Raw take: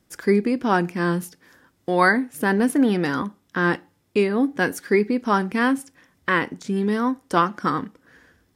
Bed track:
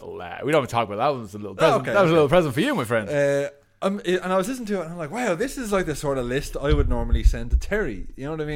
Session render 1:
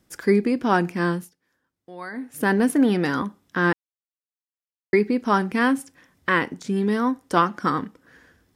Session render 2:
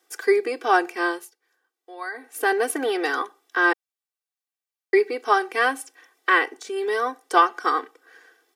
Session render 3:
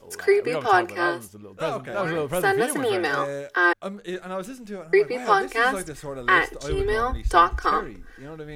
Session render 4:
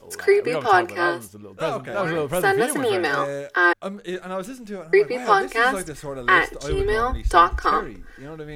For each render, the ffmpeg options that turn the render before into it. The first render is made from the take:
-filter_complex "[0:a]asplit=5[s0][s1][s2][s3][s4];[s0]atrim=end=1.34,asetpts=PTS-STARTPTS,afade=t=out:st=1.05:d=0.29:silence=0.112202[s5];[s1]atrim=start=1.34:end=2.11,asetpts=PTS-STARTPTS,volume=0.112[s6];[s2]atrim=start=2.11:end=3.73,asetpts=PTS-STARTPTS,afade=t=in:d=0.29:silence=0.112202,afade=t=out:st=1.616:d=0.004:c=hsin[s7];[s3]atrim=start=3.73:end=4.93,asetpts=PTS-STARTPTS,volume=0[s8];[s4]atrim=start=4.93,asetpts=PTS-STARTPTS,afade=t=in:d=0.004:c=hsin[s9];[s5][s6][s7][s8][s9]concat=n=5:v=0:a=1"
-af "highpass=f=420:w=0.5412,highpass=f=420:w=1.3066,aecho=1:1:2.6:0.93"
-filter_complex "[1:a]volume=0.335[s0];[0:a][s0]amix=inputs=2:normalize=0"
-af "volume=1.26"

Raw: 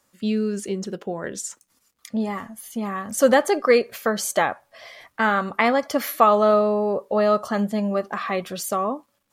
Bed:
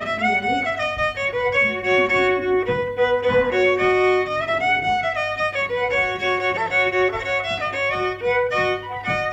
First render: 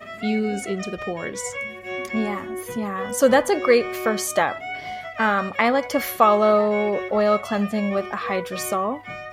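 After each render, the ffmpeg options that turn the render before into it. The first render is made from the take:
-filter_complex "[1:a]volume=0.237[s0];[0:a][s0]amix=inputs=2:normalize=0"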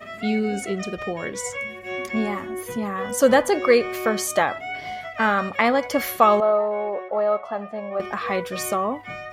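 -filter_complex "[0:a]asettb=1/sr,asplit=3[s0][s1][s2];[s0]atrim=end=6.404[s3];[s1]atrim=start=6.4:end=8,asetpts=PTS-STARTPTS,afade=t=in:d=0.004:c=qsin,afade=t=out:st=1.596:d=0.004:c=qsin,bandpass=f=760:t=q:w=1.4[s4];[s2]atrim=start=7.996[s5];[s3][s4]acrossfade=d=0.004:c1=hsin:c2=qsin[s6];[s6][s5]acrossfade=d=0.004:c1=qsin:c2=hsin"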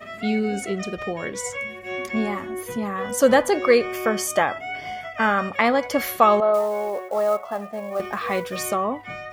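-filter_complex "[0:a]asettb=1/sr,asplit=3[s0][s1][s2];[s0]atrim=end=3.854[s3];[s1]atrim=start=3.85:end=5.56,asetpts=PTS-STARTPTS,afade=t=in:d=0.004:c=qsin,afade=t=out:st=1.706:d=0.004:c=qsin,asuperstop=centerf=4000:order=8:qfactor=6.2[s4];[s2]atrim=start=5.556[s5];[s3][s4]acrossfade=d=0.004:c1=hsin:c2=qsin[s6];[s6][s5]acrossfade=d=0.004:c1=qsin:c2=hsin,asettb=1/sr,asplit=3[s7][s8][s9];[s7]atrim=end=6.544[s10];[s8]atrim=start=6.54:end=8.71,asetpts=PTS-STARTPTS,afade=t=in:d=0.004:c=qsin,afade=t=out:st=2.166:d=0.004:c=qsin,acrusher=bits=6:mode=log:mix=0:aa=0.000001[s11];[s9]atrim=start=8.706[s12];[s10][s11]acrossfade=d=0.004:c1=hsin:c2=qsin[s13];[s13][s12]acrossfade=d=0.004:c1=qsin:c2=hsin"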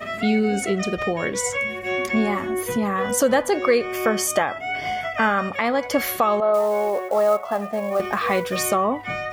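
-filter_complex "[0:a]asplit=2[s0][s1];[s1]acompressor=threshold=0.0316:ratio=6,volume=1.33[s2];[s0][s2]amix=inputs=2:normalize=0,alimiter=limit=0.376:level=0:latency=1:release=475"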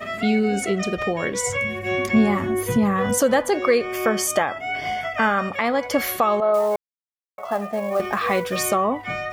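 -filter_complex "[0:a]asettb=1/sr,asplit=3[s0][s1][s2];[s0]atrim=end=1.474[s3];[s1]atrim=start=1.47:end=3.18,asetpts=PTS-STARTPTS,afade=t=in:d=0.004:c=qsin,afade=t=out:st=1.706:d=0.004:c=qsin,equalizer=f=110:w=0.86:g=12[s4];[s2]atrim=start=3.176[s5];[s3][s4]acrossfade=d=0.004:c1=hsin:c2=qsin[s6];[s6][s5]acrossfade=d=0.004:c1=qsin:c2=hsin,asplit=3[s7][s8][s9];[s7]atrim=end=6.76,asetpts=PTS-STARTPTS,afade=t=out:st=6.756:d=0.004:c=hsin[s10];[s8]atrim=start=6.76:end=7.38,asetpts=PTS-STARTPTS,volume=0[s11];[s9]atrim=start=7.38,asetpts=PTS-STARTPTS,afade=t=in:d=0.004:c=hsin[s12];[s10][s11][s12]concat=n=3:v=0:a=1"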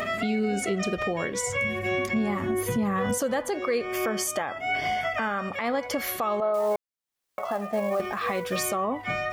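-af "acompressor=mode=upward:threshold=0.0398:ratio=2.5,alimiter=limit=0.126:level=0:latency=1:release=284"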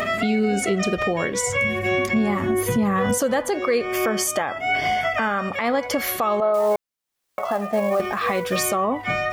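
-af "volume=1.88"

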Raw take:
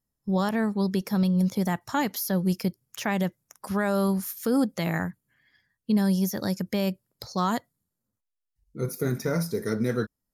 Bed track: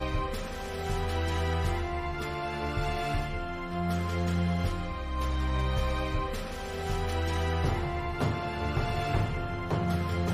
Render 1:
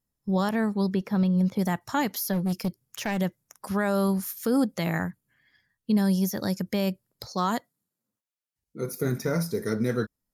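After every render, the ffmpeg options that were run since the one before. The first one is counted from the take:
-filter_complex "[0:a]asettb=1/sr,asplit=3[s0][s1][s2];[s0]atrim=end=0.894[s3];[s1]atrim=start=0.89:end=1.59,asetpts=PTS-STARTPTS,afade=t=in:d=0.004:c=qsin,afade=t=out:st=0.696:d=0.004:c=qsin,acrossover=split=3400[s4][s5];[s5]acompressor=threshold=0.00158:ratio=4:attack=1:release=60[s6];[s4][s6]amix=inputs=2:normalize=0[s7];[s2]atrim=start=1.586[s8];[s3][s7]acrossfade=d=0.004:c1=hsin:c2=qsin[s9];[s9][s8]acrossfade=d=0.004:c1=qsin:c2=hsin,asplit=3[s10][s11][s12];[s10]afade=t=out:st=2.32:d=0.02[s13];[s11]asoftclip=type=hard:threshold=0.075,afade=t=in:st=2.32:d=0.02,afade=t=out:st=3.2:d=0.02[s14];[s12]afade=t=in:st=3.2:d=0.02[s15];[s13][s14][s15]amix=inputs=3:normalize=0,asettb=1/sr,asplit=3[s16][s17][s18];[s16]atrim=end=7.284[s19];[s17]atrim=start=7.28:end=8.93,asetpts=PTS-STARTPTS,afade=t=in:d=0.004:c=qsin,afade=t=out:st=1.646:d=0.004:c=qsin,highpass=170[s20];[s18]atrim=start=8.926[s21];[s19][s20]acrossfade=d=0.004:c1=hsin:c2=qsin[s22];[s22][s21]acrossfade=d=0.004:c1=qsin:c2=hsin"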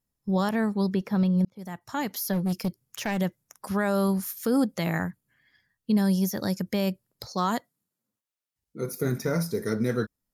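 -filter_complex "[0:a]asplit=2[s0][s1];[s0]atrim=end=1.45,asetpts=PTS-STARTPTS,afade=t=out:st=1.446:d=0.004:c=hsin[s2];[s1]atrim=start=1.45,asetpts=PTS-STARTPTS,afade=t=in:d=0.86[s3];[s2][s3]concat=n=2:v=0:a=1"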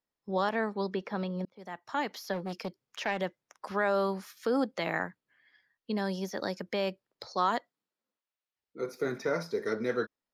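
-filter_complex "[0:a]acrossover=split=310 5000:gain=0.126 1 0.0708[s0][s1][s2];[s0][s1][s2]amix=inputs=3:normalize=0"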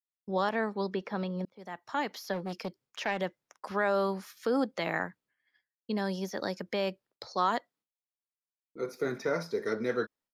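-af "agate=range=0.0224:threshold=0.00141:ratio=3:detection=peak"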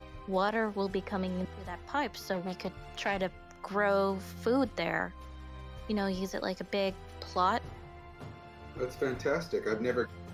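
-filter_complex "[1:a]volume=0.141[s0];[0:a][s0]amix=inputs=2:normalize=0"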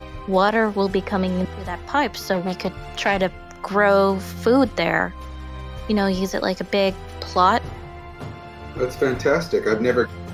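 -af "volume=3.98"

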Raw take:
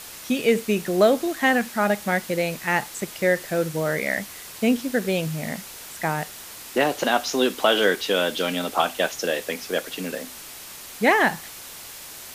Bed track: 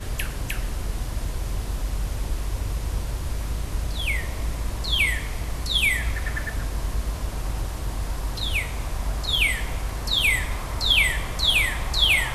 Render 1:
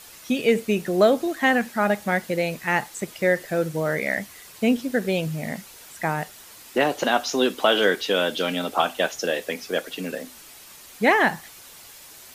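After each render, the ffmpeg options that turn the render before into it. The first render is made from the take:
-af "afftdn=nr=7:nf=-40"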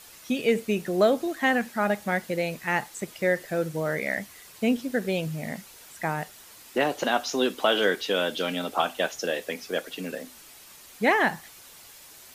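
-af "volume=0.668"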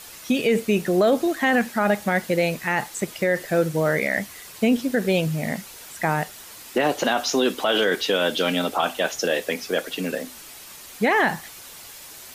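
-af "alimiter=limit=0.133:level=0:latency=1:release=24,acontrast=81"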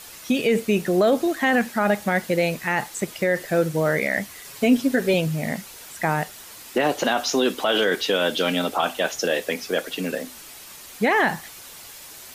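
-filter_complex "[0:a]asettb=1/sr,asplit=3[s0][s1][s2];[s0]atrim=end=4.444[s3];[s1]atrim=start=4.44:end=5.14,asetpts=PTS-STARTPTS,afade=t=in:d=0.004:c=qsin,afade=t=out:st=0.696:d=0.004:c=qsin,aecho=1:1:7.3:0.65,atrim=end_sample=30870[s4];[s2]atrim=start=5.136[s5];[s3][s4]acrossfade=d=0.004:c1=hsin:c2=qsin[s6];[s6][s5]acrossfade=d=0.004:c1=qsin:c2=hsin"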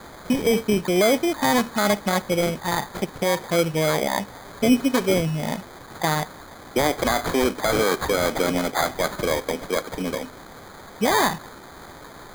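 -af "acrusher=samples=16:mix=1:aa=0.000001"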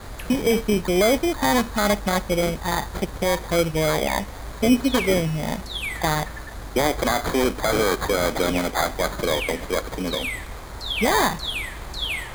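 -filter_complex "[1:a]volume=0.376[s0];[0:a][s0]amix=inputs=2:normalize=0"

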